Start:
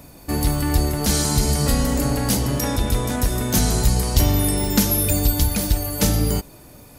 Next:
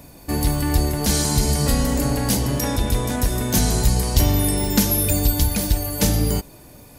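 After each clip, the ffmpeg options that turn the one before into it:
ffmpeg -i in.wav -af "bandreject=frequency=1300:width=12" out.wav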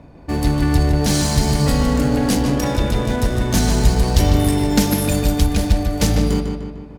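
ffmpeg -i in.wav -filter_complex "[0:a]adynamicsmooth=sensitivity=7:basefreq=1700,asplit=2[link_01][link_02];[link_02]adelay=150,lowpass=frequency=3500:poles=1,volume=-5dB,asplit=2[link_03][link_04];[link_04]adelay=150,lowpass=frequency=3500:poles=1,volume=0.54,asplit=2[link_05][link_06];[link_06]adelay=150,lowpass=frequency=3500:poles=1,volume=0.54,asplit=2[link_07][link_08];[link_08]adelay=150,lowpass=frequency=3500:poles=1,volume=0.54,asplit=2[link_09][link_10];[link_10]adelay=150,lowpass=frequency=3500:poles=1,volume=0.54,asplit=2[link_11][link_12];[link_12]adelay=150,lowpass=frequency=3500:poles=1,volume=0.54,asplit=2[link_13][link_14];[link_14]adelay=150,lowpass=frequency=3500:poles=1,volume=0.54[link_15];[link_01][link_03][link_05][link_07][link_09][link_11][link_13][link_15]amix=inputs=8:normalize=0,volume=2dB" out.wav

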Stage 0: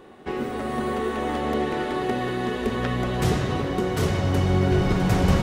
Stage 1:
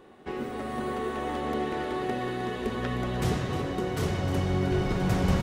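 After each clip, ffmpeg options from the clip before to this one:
ffmpeg -i in.wav -af "aecho=1:1:308:0.266,volume=-5.5dB" out.wav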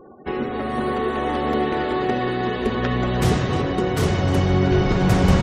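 ffmpeg -i in.wav -af "afftfilt=real='re*gte(hypot(re,im),0.00316)':imag='im*gte(hypot(re,im),0.00316)':win_size=1024:overlap=0.75,volume=8.5dB" out.wav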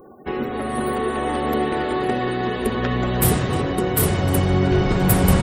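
ffmpeg -i in.wav -af "aexciter=amount=9.7:drive=7:freq=8900" out.wav

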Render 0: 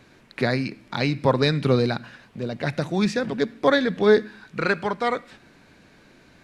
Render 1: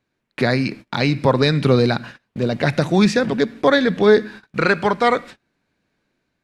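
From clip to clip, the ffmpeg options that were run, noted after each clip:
ffmpeg -i in.wav -filter_complex "[0:a]asplit=2[link_01][link_02];[link_02]alimiter=limit=-14.5dB:level=0:latency=1:release=150,volume=0.5dB[link_03];[link_01][link_03]amix=inputs=2:normalize=0,agate=range=-28dB:threshold=-35dB:ratio=16:detection=peak,dynaudnorm=framelen=220:gausssize=5:maxgain=4.5dB" out.wav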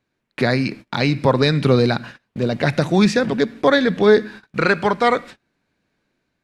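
ffmpeg -i in.wav -af anull out.wav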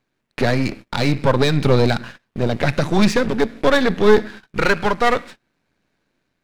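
ffmpeg -i in.wav -af "aeval=exprs='if(lt(val(0),0),0.251*val(0),val(0))':channel_layout=same,volume=4dB" out.wav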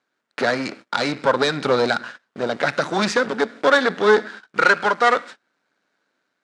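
ffmpeg -i in.wav -af "highpass=330,equalizer=frequency=360:width_type=q:width=4:gain=-3,equalizer=frequency=1400:width_type=q:width=4:gain=7,equalizer=frequency=2500:width_type=q:width=4:gain=-4,lowpass=frequency=8800:width=0.5412,lowpass=frequency=8800:width=1.3066" out.wav

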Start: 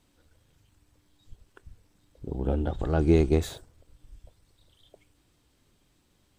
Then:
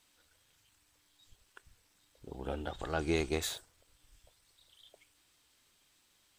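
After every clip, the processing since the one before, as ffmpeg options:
ffmpeg -i in.wav -af "tiltshelf=frequency=640:gain=-9.5,volume=-6dB" out.wav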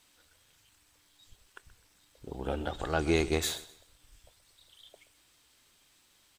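ffmpeg -i in.wav -af "aecho=1:1:127|254|381:0.141|0.0452|0.0145,volume=4.5dB" out.wav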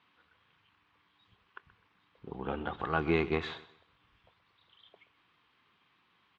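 ffmpeg -i in.wav -af "highpass=110,equalizer=frequency=180:width_type=q:width=4:gain=4,equalizer=frequency=300:width_type=q:width=4:gain=-3,equalizer=frequency=590:width_type=q:width=4:gain=-8,equalizer=frequency=1100:width_type=q:width=4:gain=8,lowpass=frequency=3000:width=0.5412,lowpass=frequency=3000:width=1.3066" out.wav

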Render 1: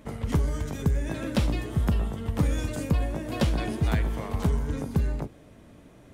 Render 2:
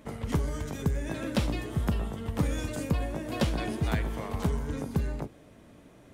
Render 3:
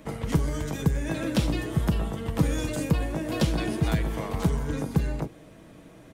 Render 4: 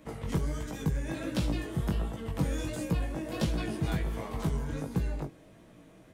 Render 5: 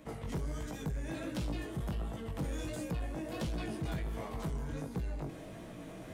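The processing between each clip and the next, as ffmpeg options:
ffmpeg -i in.wav -af "lowshelf=frequency=130:gain=-5,volume=-1dB" out.wav
ffmpeg -i in.wav -filter_complex "[0:a]asplit=2[link_01][link_02];[link_02]volume=20dB,asoftclip=hard,volume=-20dB,volume=-4dB[link_03];[link_01][link_03]amix=inputs=2:normalize=0,acrossover=split=500|3000[link_04][link_05][link_06];[link_05]acompressor=threshold=-33dB:ratio=6[link_07];[link_04][link_07][link_06]amix=inputs=3:normalize=0,aecho=1:1:6.2:0.34" out.wav
ffmpeg -i in.wav -af "flanger=delay=16.5:depth=5.7:speed=1.4,volume=-3dB" out.wav
ffmpeg -i in.wav -af "equalizer=frequency=700:width_type=o:width=0.25:gain=3,areverse,acompressor=mode=upward:threshold=-31dB:ratio=2.5,areverse,asoftclip=type=tanh:threshold=-27dB,volume=-3.5dB" out.wav

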